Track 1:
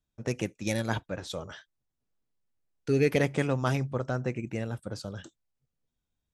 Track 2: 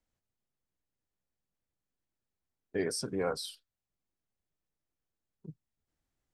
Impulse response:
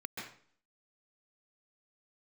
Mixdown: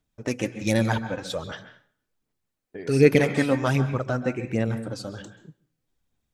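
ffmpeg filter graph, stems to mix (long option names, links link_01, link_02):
-filter_complex "[0:a]aphaser=in_gain=1:out_gain=1:delay=4:decay=0.5:speed=1.3:type=sinusoidal,volume=1.5dB,asplit=2[link_01][link_02];[link_02]volume=-7.5dB[link_03];[1:a]acompressor=threshold=-40dB:ratio=2,volume=0dB,asplit=2[link_04][link_05];[link_05]volume=-23dB[link_06];[2:a]atrim=start_sample=2205[link_07];[link_03][link_06]amix=inputs=2:normalize=0[link_08];[link_08][link_07]afir=irnorm=-1:irlink=0[link_09];[link_01][link_04][link_09]amix=inputs=3:normalize=0"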